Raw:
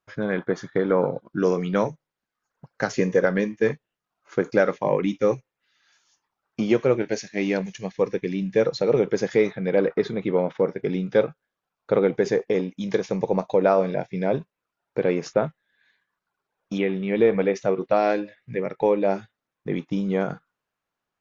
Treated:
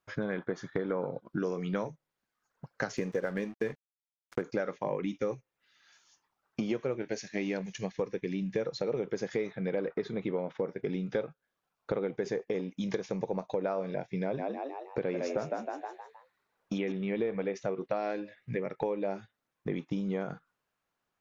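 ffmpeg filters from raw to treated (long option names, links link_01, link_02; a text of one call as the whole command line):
ffmpeg -i in.wav -filter_complex "[0:a]asettb=1/sr,asplit=3[link_01][link_02][link_03];[link_01]atrim=end=2.974[link_04];[link_02]atrim=start=2.97:end=4.42,asetpts=PTS-STARTPTS,afade=type=in:duration=0.004:curve=qsin,afade=type=out:start_time=1.446:duration=0.004:curve=qsin,aeval=exprs='sgn(val(0))*max(abs(val(0))-0.00841,0)':channel_layout=same[link_05];[link_03]atrim=start=4.416[link_06];[link_04][link_05]acrossfade=duration=0.004:curve1=hsin:curve2=qsin[link_07];[link_07][link_06]acrossfade=duration=0.004:curve1=qsin:curve2=hsin,asettb=1/sr,asplit=3[link_08][link_09][link_10];[link_08]atrim=end=14.224[link_11];[link_09]atrim=start=14.22:end=16.92,asetpts=PTS-STARTPTS,afade=type=in:duration=0.004:curve=qsin,afade=type=out:start_time=2.696:duration=0.004:curve=qsin,asplit=6[link_12][link_13][link_14][link_15][link_16][link_17];[link_13]adelay=157,afreqshift=72,volume=-4dB[link_18];[link_14]adelay=314,afreqshift=144,volume=-12dB[link_19];[link_15]adelay=471,afreqshift=216,volume=-19.9dB[link_20];[link_16]adelay=628,afreqshift=288,volume=-27.9dB[link_21];[link_17]adelay=785,afreqshift=360,volume=-35.8dB[link_22];[link_12][link_18][link_19][link_20][link_21][link_22]amix=inputs=6:normalize=0,atrim=end_sample=119070[link_23];[link_10]atrim=start=16.916[link_24];[link_11][link_23]acrossfade=duration=0.004:curve1=hsin:curve2=qsin[link_25];[link_25][link_24]acrossfade=duration=0.004:curve1=qsin:curve2=hsin,acompressor=threshold=-31dB:ratio=4" out.wav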